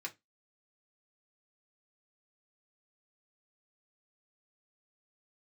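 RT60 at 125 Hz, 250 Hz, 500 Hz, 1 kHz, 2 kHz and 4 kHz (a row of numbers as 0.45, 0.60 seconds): 0.20, 0.25, 0.20, 0.15, 0.20, 0.15 seconds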